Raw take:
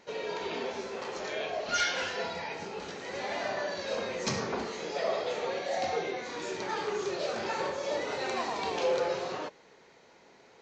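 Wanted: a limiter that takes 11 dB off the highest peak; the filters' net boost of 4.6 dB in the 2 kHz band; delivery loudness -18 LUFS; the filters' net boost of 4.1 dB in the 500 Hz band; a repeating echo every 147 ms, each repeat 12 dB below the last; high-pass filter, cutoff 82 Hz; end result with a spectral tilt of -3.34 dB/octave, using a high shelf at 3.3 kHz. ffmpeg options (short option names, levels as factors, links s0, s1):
-af "highpass=82,equalizer=f=500:t=o:g=4.5,equalizer=f=2000:t=o:g=6.5,highshelf=f=3300:g=-3,alimiter=level_in=1.26:limit=0.0631:level=0:latency=1,volume=0.794,aecho=1:1:147|294|441:0.251|0.0628|0.0157,volume=6.31"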